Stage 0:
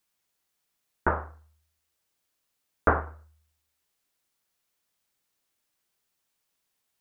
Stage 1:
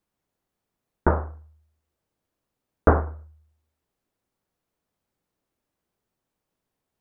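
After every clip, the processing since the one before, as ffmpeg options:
-af "tiltshelf=f=1.2k:g=9.5"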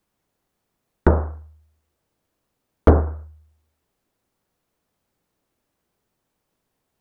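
-filter_complex "[0:a]acrossover=split=610[a][b];[b]acompressor=threshold=-32dB:ratio=6[c];[a][c]amix=inputs=2:normalize=0,asoftclip=type=hard:threshold=-8dB,volume=6.5dB"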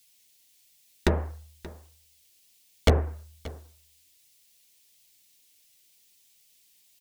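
-af "flanger=delay=1.4:depth=3.6:regen=-51:speed=1.4:shape=sinusoidal,aexciter=amount=15.5:drive=4.9:freq=2.1k,aecho=1:1:580:0.112,volume=-4dB"

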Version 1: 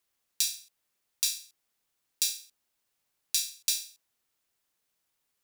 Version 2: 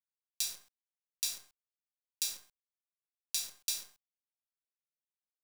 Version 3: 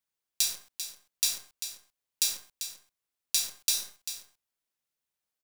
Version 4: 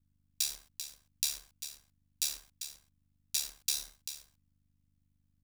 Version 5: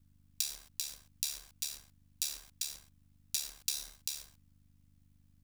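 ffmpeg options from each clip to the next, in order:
-af "acrusher=bits=7:dc=4:mix=0:aa=0.000001,volume=-6.5dB"
-af "aecho=1:1:393:0.316,volume=7.5dB"
-af "aeval=exprs='val(0)+0.000447*(sin(2*PI*50*n/s)+sin(2*PI*2*50*n/s)/2+sin(2*PI*3*50*n/s)/3+sin(2*PI*4*50*n/s)/4+sin(2*PI*5*50*n/s)/5)':c=same,aeval=exprs='val(0)*sin(2*PI*36*n/s)':c=same,volume=-2.5dB"
-af "acompressor=threshold=-42dB:ratio=4,volume=8.5dB"

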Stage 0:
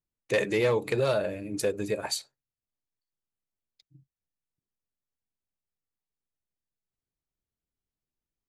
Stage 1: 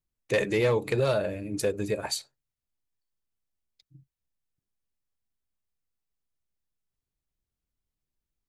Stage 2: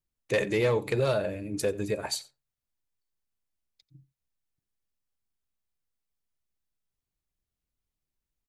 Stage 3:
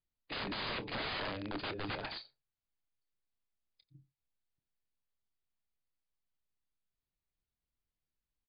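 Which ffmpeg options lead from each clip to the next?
-af "lowshelf=f=98:g=9"
-af "aecho=1:1:89:0.0891,volume=-1dB"
-filter_complex "[0:a]aeval=exprs='(mod(23.7*val(0)+1,2)-1)/23.7':c=same,asplit=2[a][b];[b]adelay=27,volume=-13dB[c];[a][c]amix=inputs=2:normalize=0,volume=-4.5dB" -ar 11025 -c:a libmp3lame -b:a 40k

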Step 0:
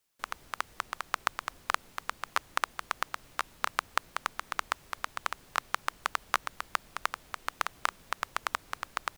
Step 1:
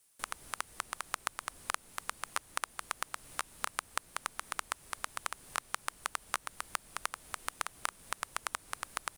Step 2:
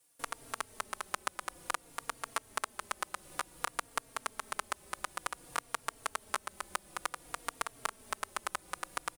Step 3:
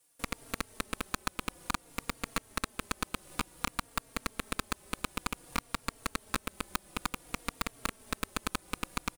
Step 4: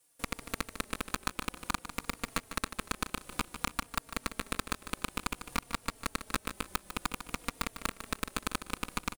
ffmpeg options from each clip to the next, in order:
-af "equalizer=f=9.5k:t=o:w=0.63:g=14,acompressor=threshold=-42dB:ratio=2,volume=3.5dB"
-filter_complex "[0:a]equalizer=f=430:t=o:w=2.2:g=7,asplit=2[a][b];[b]adelay=3.7,afreqshift=-0.55[c];[a][c]amix=inputs=2:normalize=1,volume=1.5dB"
-af "aeval=exprs='0.316*sin(PI/2*1.58*val(0)/0.316)':c=same,aeval=exprs='0.316*(cos(1*acos(clip(val(0)/0.316,-1,1)))-cos(1*PI/2))+0.0631*(cos(3*acos(clip(val(0)/0.316,-1,1)))-cos(3*PI/2))+0.0251*(cos(5*acos(clip(val(0)/0.316,-1,1)))-cos(5*PI/2))+0.0891*(cos(6*acos(clip(val(0)/0.316,-1,1)))-cos(6*PI/2))':c=same,volume=-5.5dB"
-af "aecho=1:1:150|300|450:0.282|0.0874|0.0271"

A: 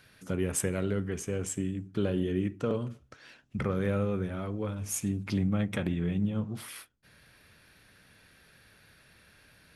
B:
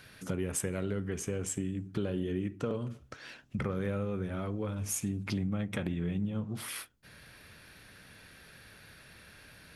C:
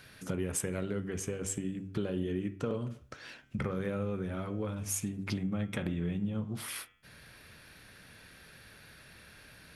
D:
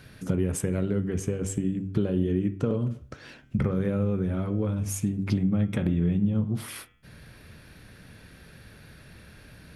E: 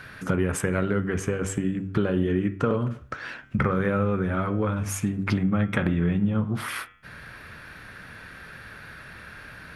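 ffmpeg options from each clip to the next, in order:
-af "acompressor=threshold=-39dB:ratio=2.5,volume=5dB"
-af "bandreject=f=96.91:t=h:w=4,bandreject=f=193.82:t=h:w=4,bandreject=f=290.73:t=h:w=4,bandreject=f=387.64:t=h:w=4,bandreject=f=484.55:t=h:w=4,bandreject=f=581.46:t=h:w=4,bandreject=f=678.37:t=h:w=4,bandreject=f=775.28:t=h:w=4,bandreject=f=872.19:t=h:w=4,bandreject=f=969.1:t=h:w=4,bandreject=f=1.06601k:t=h:w=4,bandreject=f=1.16292k:t=h:w=4,bandreject=f=1.25983k:t=h:w=4,bandreject=f=1.35674k:t=h:w=4,bandreject=f=1.45365k:t=h:w=4,bandreject=f=1.55056k:t=h:w=4,bandreject=f=1.64747k:t=h:w=4,bandreject=f=1.74438k:t=h:w=4,bandreject=f=1.84129k:t=h:w=4,bandreject=f=1.9382k:t=h:w=4,bandreject=f=2.03511k:t=h:w=4,bandreject=f=2.13202k:t=h:w=4,bandreject=f=2.22893k:t=h:w=4,bandreject=f=2.32584k:t=h:w=4,bandreject=f=2.42275k:t=h:w=4,bandreject=f=2.51966k:t=h:w=4,bandreject=f=2.61657k:t=h:w=4,bandreject=f=2.71348k:t=h:w=4,bandreject=f=2.81039k:t=h:w=4,bandreject=f=2.9073k:t=h:w=4,bandreject=f=3.00421k:t=h:w=4,bandreject=f=3.10112k:t=h:w=4,bandreject=f=3.19803k:t=h:w=4,bandreject=f=3.29494k:t=h:w=4,bandreject=f=3.39185k:t=h:w=4,bandreject=f=3.48876k:t=h:w=4"
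-af "lowshelf=f=490:g=11"
-af "equalizer=f=1.4k:t=o:w=1.9:g=14.5"

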